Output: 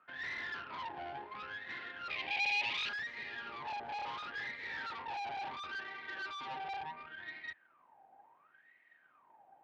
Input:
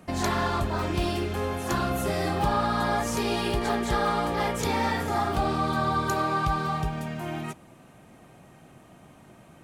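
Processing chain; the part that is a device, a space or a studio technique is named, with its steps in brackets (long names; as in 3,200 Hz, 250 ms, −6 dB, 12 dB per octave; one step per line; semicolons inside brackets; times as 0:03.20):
wah-wah guitar rig (LFO wah 0.71 Hz 780–2,000 Hz, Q 20; tube saturation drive 50 dB, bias 0.7; loudspeaker in its box 110–4,300 Hz, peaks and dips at 110 Hz −4 dB, 190 Hz −6 dB, 680 Hz −4 dB, 1,200 Hz −7 dB)
0:02.10–0:02.89: high shelf with overshoot 1,800 Hz +9 dB, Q 3
level +13 dB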